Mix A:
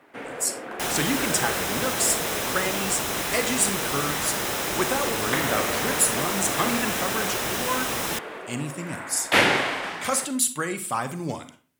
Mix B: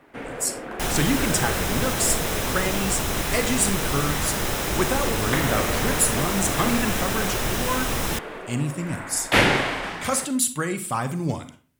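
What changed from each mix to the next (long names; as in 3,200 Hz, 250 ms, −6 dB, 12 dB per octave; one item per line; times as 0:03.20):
master: remove high-pass filter 300 Hz 6 dB per octave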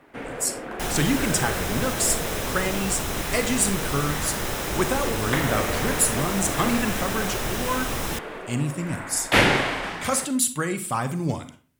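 second sound −3.0 dB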